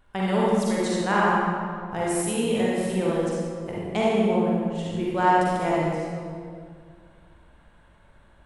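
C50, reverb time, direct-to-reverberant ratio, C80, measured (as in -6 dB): -4.0 dB, 2.1 s, -6.5 dB, -1.0 dB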